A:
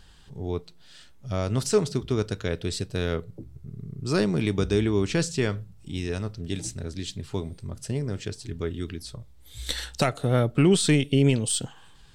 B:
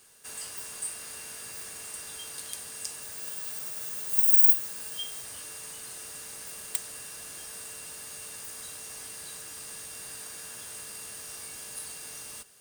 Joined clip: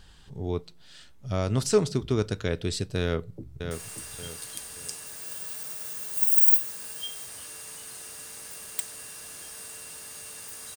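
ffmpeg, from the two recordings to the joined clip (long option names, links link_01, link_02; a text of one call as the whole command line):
ffmpeg -i cue0.wav -i cue1.wav -filter_complex "[0:a]apad=whole_dur=10.76,atrim=end=10.76,atrim=end=3.712[link_01];[1:a]atrim=start=1.668:end=8.72[link_02];[link_01][link_02]acrossfade=duration=0.004:curve1=hsin:curve2=hsin,asplit=2[link_03][link_04];[link_04]afade=type=in:start_time=3.02:duration=0.01,afade=type=out:start_time=3.71:duration=0.01,aecho=0:1:580|1160|1740|2320:0.473151|0.165603|0.057961|0.0202864[link_05];[link_03][link_05]amix=inputs=2:normalize=0" out.wav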